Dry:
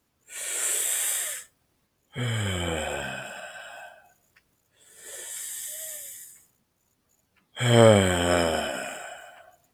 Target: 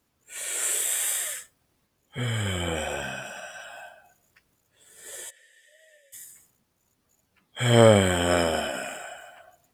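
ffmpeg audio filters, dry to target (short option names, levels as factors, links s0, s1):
-filter_complex "[0:a]asettb=1/sr,asplit=3[s0][s1][s2];[s0]atrim=end=2.754[s3];[s1]atrim=start=2.75:end=3.64,asetpts=PTS-STARTPTS,afade=t=in:d=0.004:c=qsin,afade=t=out:st=0.886:d=0.004:c=qsin,aeval=exprs='val(0)+0.00224*sin(2*PI*5800*n/s)':c=same[s4];[s2]atrim=start=3.636[s5];[s3][s4]acrossfade=d=0.004:c1=hsin:c2=qsin[s6];[s6][s5]acrossfade=d=0.004:c1=qsin:c2=hsin,asplit=3[s7][s8][s9];[s7]afade=t=out:st=5.29:d=0.02[s10];[s8]asplit=3[s11][s12][s13];[s11]bandpass=f=530:t=q:w=8,volume=1[s14];[s12]bandpass=f=1840:t=q:w=8,volume=0.501[s15];[s13]bandpass=f=2480:t=q:w=8,volume=0.355[s16];[s14][s15][s16]amix=inputs=3:normalize=0,afade=t=in:st=5.29:d=0.02,afade=t=out:st=6.12:d=0.02[s17];[s9]afade=t=in:st=6.12:d=0.02[s18];[s10][s17][s18]amix=inputs=3:normalize=0"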